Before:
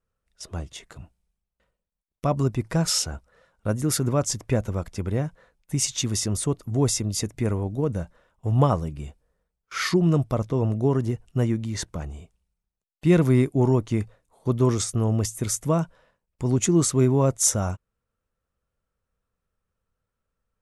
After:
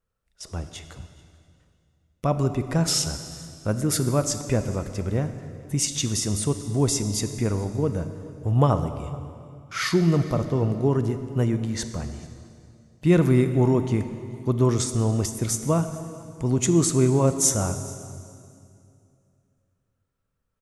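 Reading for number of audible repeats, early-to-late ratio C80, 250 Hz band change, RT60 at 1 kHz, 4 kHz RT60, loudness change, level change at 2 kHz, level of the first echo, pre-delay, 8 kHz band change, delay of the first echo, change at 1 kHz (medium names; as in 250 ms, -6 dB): 1, 10.5 dB, +0.5 dB, 2.3 s, 2.1 s, +0.5 dB, +0.5 dB, -23.0 dB, 26 ms, +0.5 dB, 435 ms, +0.5 dB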